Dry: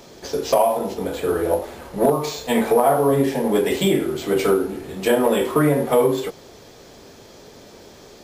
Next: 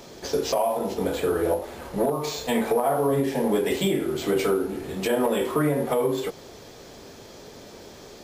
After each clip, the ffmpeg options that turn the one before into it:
ffmpeg -i in.wav -af "alimiter=limit=-14dB:level=0:latency=1:release=328" out.wav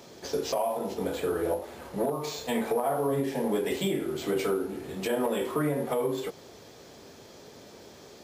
ffmpeg -i in.wav -af "highpass=69,volume=-5dB" out.wav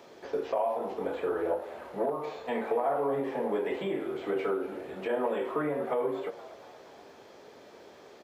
ffmpeg -i in.wav -filter_complex "[0:a]acrossover=split=2700[link_01][link_02];[link_02]acompressor=threshold=-56dB:ratio=4:attack=1:release=60[link_03];[link_01][link_03]amix=inputs=2:normalize=0,bass=frequency=250:gain=-12,treble=frequency=4000:gain=-9,asplit=6[link_04][link_05][link_06][link_07][link_08][link_09];[link_05]adelay=237,afreqshift=83,volume=-17dB[link_10];[link_06]adelay=474,afreqshift=166,volume=-21.9dB[link_11];[link_07]adelay=711,afreqshift=249,volume=-26.8dB[link_12];[link_08]adelay=948,afreqshift=332,volume=-31.6dB[link_13];[link_09]adelay=1185,afreqshift=415,volume=-36.5dB[link_14];[link_04][link_10][link_11][link_12][link_13][link_14]amix=inputs=6:normalize=0" out.wav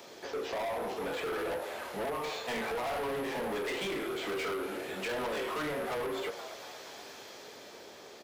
ffmpeg -i in.wav -filter_complex "[0:a]highshelf=frequency=2500:gain=11,acrossover=split=390|1100[link_01][link_02][link_03];[link_03]dynaudnorm=framelen=140:gausssize=13:maxgain=5dB[link_04];[link_01][link_02][link_04]amix=inputs=3:normalize=0,asoftclip=type=hard:threshold=-32.5dB" out.wav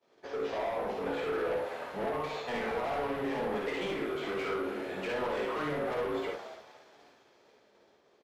ffmpeg -i in.wav -filter_complex "[0:a]lowpass=frequency=2000:poles=1,agate=range=-33dB:threshold=-40dB:ratio=3:detection=peak,asplit=2[link_01][link_02];[link_02]aecho=0:1:54|68:0.631|0.531[link_03];[link_01][link_03]amix=inputs=2:normalize=0" out.wav

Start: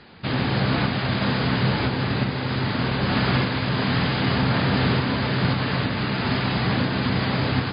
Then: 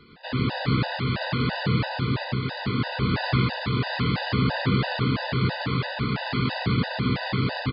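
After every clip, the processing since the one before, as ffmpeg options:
ffmpeg -i in.wav -af "aecho=1:1:107:0.708,afftfilt=real='re*gt(sin(2*PI*3*pts/sr)*(1-2*mod(floor(b*sr/1024/500),2)),0)':imag='im*gt(sin(2*PI*3*pts/sr)*(1-2*mod(floor(b*sr/1024/500),2)),0)':win_size=1024:overlap=0.75,volume=-2dB" out.wav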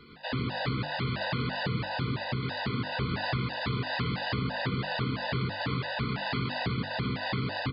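ffmpeg -i in.wav -af "acompressor=threshold=-27dB:ratio=6,bandreject=frequency=50:width_type=h:width=6,bandreject=frequency=100:width_type=h:width=6,bandreject=frequency=150:width_type=h:width=6,bandreject=frequency=200:width_type=h:width=6,bandreject=frequency=250:width_type=h:width=6,bandreject=frequency=300:width_type=h:width=6,bandreject=frequency=350:width_type=h:width=6" out.wav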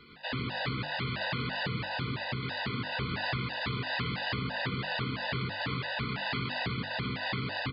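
ffmpeg -i in.wav -af "equalizer=frequency=2500:width=0.67:gain=5.5,volume=-4dB" out.wav

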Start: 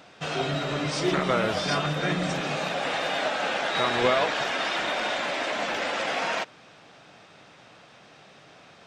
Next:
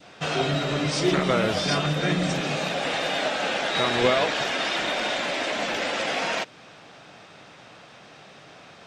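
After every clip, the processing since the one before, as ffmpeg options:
ffmpeg -i in.wav -af "adynamicequalizer=threshold=0.0126:dfrequency=1100:dqfactor=0.75:tfrequency=1100:tqfactor=0.75:attack=5:release=100:ratio=0.375:range=2.5:mode=cutabove:tftype=bell,volume=4dB" out.wav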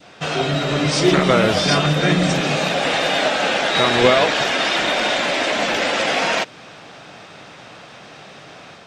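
ffmpeg -i in.wav -af "dynaudnorm=framelen=460:gausssize=3:maxgain=4dB,volume=3.5dB" out.wav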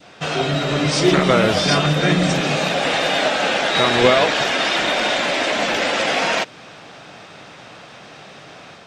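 ffmpeg -i in.wav -af anull out.wav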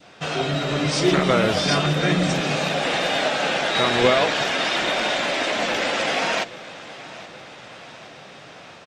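ffmpeg -i in.wav -af "aecho=1:1:823|1646|2469|3292|4115:0.119|0.0677|0.0386|0.022|0.0125,volume=-3.5dB" out.wav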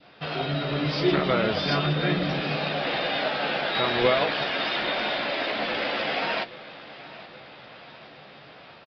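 ffmpeg -i in.wav -filter_complex "[0:a]asplit=2[link_01][link_02];[link_02]adelay=14,volume=-10.5dB[link_03];[link_01][link_03]amix=inputs=2:normalize=0,aresample=11025,aresample=44100,volume=-5dB" out.wav

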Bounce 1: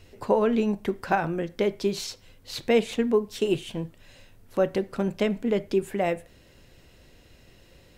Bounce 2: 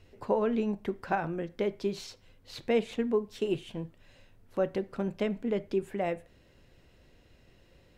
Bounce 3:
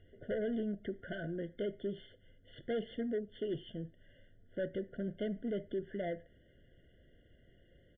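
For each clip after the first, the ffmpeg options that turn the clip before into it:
ffmpeg -i in.wav -af "highshelf=frequency=4600:gain=-8.5,volume=-5.5dB" out.wav
ffmpeg -i in.wav -af "aresample=8000,asoftclip=type=tanh:threshold=-27.5dB,aresample=44100,afftfilt=real='re*eq(mod(floor(b*sr/1024/710),2),0)':imag='im*eq(mod(floor(b*sr/1024/710),2),0)':win_size=1024:overlap=0.75,volume=-3.5dB" out.wav

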